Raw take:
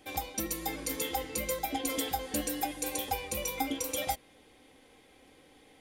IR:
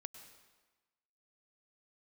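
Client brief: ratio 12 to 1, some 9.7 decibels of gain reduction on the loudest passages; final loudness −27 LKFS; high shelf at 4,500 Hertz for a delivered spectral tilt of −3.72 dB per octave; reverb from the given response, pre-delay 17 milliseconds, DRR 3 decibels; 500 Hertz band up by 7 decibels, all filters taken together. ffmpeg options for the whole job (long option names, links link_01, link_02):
-filter_complex "[0:a]equalizer=frequency=500:width_type=o:gain=7.5,highshelf=frequency=4500:gain=-6.5,acompressor=threshold=-35dB:ratio=12,asplit=2[link_01][link_02];[1:a]atrim=start_sample=2205,adelay=17[link_03];[link_02][link_03]afir=irnorm=-1:irlink=0,volume=1.5dB[link_04];[link_01][link_04]amix=inputs=2:normalize=0,volume=11dB"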